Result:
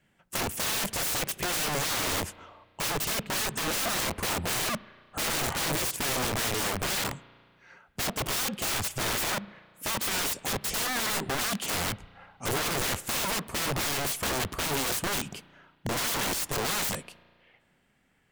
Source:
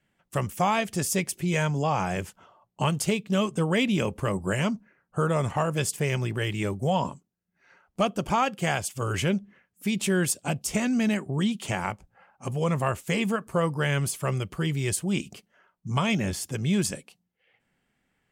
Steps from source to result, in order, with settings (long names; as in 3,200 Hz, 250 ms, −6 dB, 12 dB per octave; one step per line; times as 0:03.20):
wrap-around overflow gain 29 dB
spring reverb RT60 1.9 s, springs 34 ms, chirp 40 ms, DRR 19 dB
level +4.5 dB